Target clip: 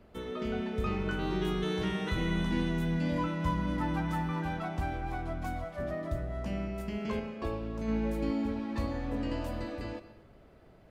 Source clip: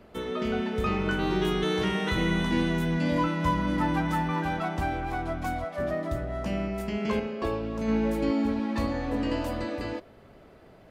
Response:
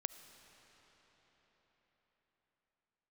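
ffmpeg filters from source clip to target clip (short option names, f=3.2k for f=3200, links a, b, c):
-filter_complex "[0:a]lowshelf=f=130:g=7.5[a];[1:a]atrim=start_sample=2205,afade=t=out:st=0.31:d=0.01,atrim=end_sample=14112[b];[a][b]afir=irnorm=-1:irlink=0,volume=-5dB"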